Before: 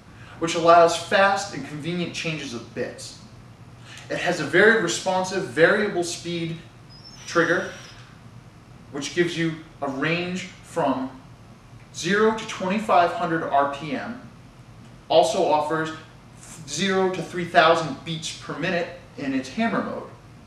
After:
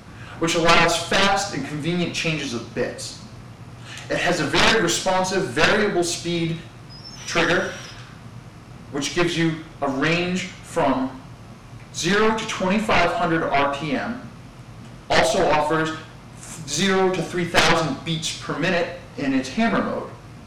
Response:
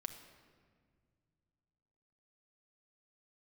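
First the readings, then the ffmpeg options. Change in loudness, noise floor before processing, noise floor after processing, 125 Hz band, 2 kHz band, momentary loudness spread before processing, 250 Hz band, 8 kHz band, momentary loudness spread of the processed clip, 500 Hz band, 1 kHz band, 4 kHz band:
+1.5 dB, −48 dBFS, −42 dBFS, +4.5 dB, +2.0 dB, 17 LU, +3.0 dB, +5.5 dB, 20 LU, −0.5 dB, +0.5 dB, +6.0 dB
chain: -af "aeval=exprs='0.75*(cos(1*acos(clip(val(0)/0.75,-1,1)))-cos(1*PI/2))+0.266*(cos(3*acos(clip(val(0)/0.75,-1,1)))-cos(3*PI/2))+0.0841*(cos(6*acos(clip(val(0)/0.75,-1,1)))-cos(6*PI/2))+0.188*(cos(7*acos(clip(val(0)/0.75,-1,1)))-cos(7*PI/2))':channel_layout=same"

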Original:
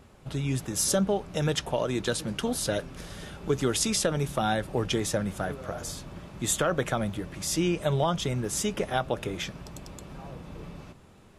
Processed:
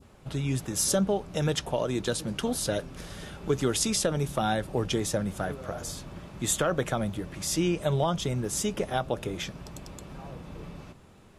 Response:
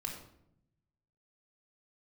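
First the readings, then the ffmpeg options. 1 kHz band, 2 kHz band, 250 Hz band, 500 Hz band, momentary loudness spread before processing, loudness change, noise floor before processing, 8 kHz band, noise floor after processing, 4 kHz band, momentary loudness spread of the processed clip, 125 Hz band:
−1.0 dB, −2.0 dB, 0.0 dB, −0.5 dB, 17 LU, −0.5 dB, −53 dBFS, 0.0 dB, −53 dBFS, −1.0 dB, 17 LU, 0.0 dB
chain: -af "adynamicequalizer=threshold=0.00708:dfrequency=1900:dqfactor=0.78:tfrequency=1900:tqfactor=0.78:attack=5:release=100:ratio=0.375:range=2:mode=cutabove:tftype=bell"

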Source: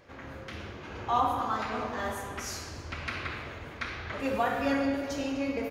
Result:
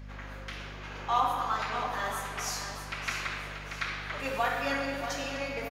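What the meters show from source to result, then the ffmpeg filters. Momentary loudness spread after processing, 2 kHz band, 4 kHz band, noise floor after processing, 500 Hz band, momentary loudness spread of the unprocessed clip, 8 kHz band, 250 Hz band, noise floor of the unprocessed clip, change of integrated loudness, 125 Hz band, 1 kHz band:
12 LU, +2.5 dB, +3.5 dB, −42 dBFS, −3.0 dB, 14 LU, +4.0 dB, −8.5 dB, −45 dBFS, −0.5 dB, −1.5 dB, +0.5 dB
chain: -af "highpass=frequency=1100:poles=1,aeval=exprs='val(0)+0.00501*(sin(2*PI*50*n/s)+sin(2*PI*2*50*n/s)/2+sin(2*PI*3*50*n/s)/3+sin(2*PI*4*50*n/s)/4+sin(2*PI*5*50*n/s)/5)':channel_layout=same,aecho=1:1:633|1266|1899|2532:0.355|0.124|0.0435|0.0152,volume=3.5dB"

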